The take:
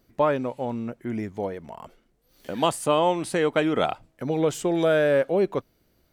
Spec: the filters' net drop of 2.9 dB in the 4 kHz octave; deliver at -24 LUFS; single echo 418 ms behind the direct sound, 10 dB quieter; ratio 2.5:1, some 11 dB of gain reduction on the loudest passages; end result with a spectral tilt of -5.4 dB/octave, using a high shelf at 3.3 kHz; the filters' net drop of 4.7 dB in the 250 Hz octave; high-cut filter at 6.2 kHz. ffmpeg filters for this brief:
-af "lowpass=6200,equalizer=f=250:t=o:g=-7,highshelf=f=3300:g=5.5,equalizer=f=4000:t=o:g=-7.5,acompressor=threshold=0.0178:ratio=2.5,aecho=1:1:418:0.316,volume=3.76"

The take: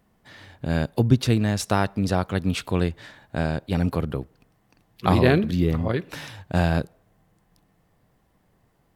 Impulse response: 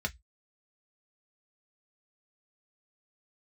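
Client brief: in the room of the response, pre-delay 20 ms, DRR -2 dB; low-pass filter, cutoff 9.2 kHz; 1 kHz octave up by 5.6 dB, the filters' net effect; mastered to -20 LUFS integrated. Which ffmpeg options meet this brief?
-filter_complex "[0:a]lowpass=9200,equalizer=f=1000:t=o:g=7.5,asplit=2[s0][s1];[1:a]atrim=start_sample=2205,adelay=20[s2];[s1][s2]afir=irnorm=-1:irlink=0,volume=0.75[s3];[s0][s3]amix=inputs=2:normalize=0,volume=0.708"

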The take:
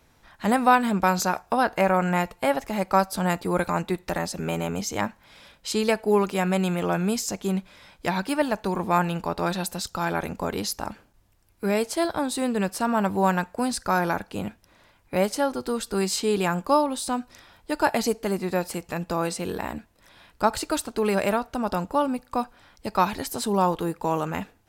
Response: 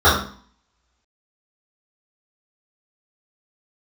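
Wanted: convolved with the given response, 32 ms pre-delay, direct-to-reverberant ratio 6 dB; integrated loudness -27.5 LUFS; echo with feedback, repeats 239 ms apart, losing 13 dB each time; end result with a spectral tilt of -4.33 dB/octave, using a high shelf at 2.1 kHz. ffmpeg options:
-filter_complex "[0:a]highshelf=f=2100:g=3.5,aecho=1:1:239|478|717:0.224|0.0493|0.0108,asplit=2[s0][s1];[1:a]atrim=start_sample=2205,adelay=32[s2];[s1][s2]afir=irnorm=-1:irlink=0,volume=0.0237[s3];[s0][s3]amix=inputs=2:normalize=0,volume=0.631"

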